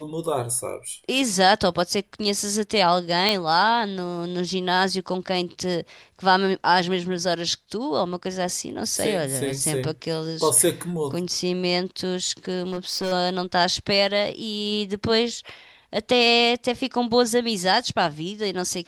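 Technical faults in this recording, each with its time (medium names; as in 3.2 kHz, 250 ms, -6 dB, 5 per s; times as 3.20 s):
3.29 s: pop -6 dBFS
12.62–13.13 s: clipped -22.5 dBFS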